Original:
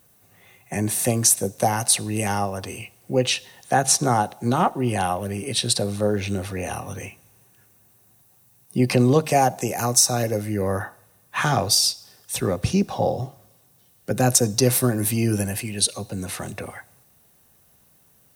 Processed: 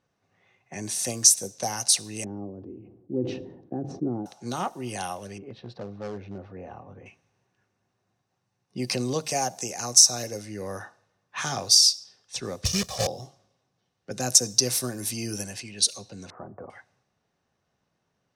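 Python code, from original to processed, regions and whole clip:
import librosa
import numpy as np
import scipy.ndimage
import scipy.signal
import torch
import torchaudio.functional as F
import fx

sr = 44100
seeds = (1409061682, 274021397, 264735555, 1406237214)

y = fx.chain(x, sr, fx.lowpass_res(hz=320.0, q=3.9),
    fx.sustainer(db_per_s=64.0), at=(2.24, 4.26))
y = fx.chain(y, sr, fx.lowpass(hz=1000.0, slope=12),
    fx.clip_hard(threshold_db=-19.5), at=(5.38, 7.06))
y = fx.chain(y, sr, fx.block_float(bits=3),
    fx.peak_eq(hz=67.0, db=11.5, octaves=1.7),
    fx.comb(ms=1.7, depth=0.9), at=(12.65, 13.07))
y = fx.chain(y, sr, fx.steep_lowpass(hz=1300.0, slope=36),
    fx.peak_eq(hz=620.0, db=4.0, octaves=2.2), at=(16.3, 16.7))
y = fx.low_shelf(y, sr, hz=100.0, db=-8.5)
y = fx.env_lowpass(y, sr, base_hz=1900.0, full_db=-19.0)
y = fx.peak_eq(y, sr, hz=5700.0, db=14.5, octaves=1.2)
y = F.gain(torch.from_numpy(y), -10.0).numpy()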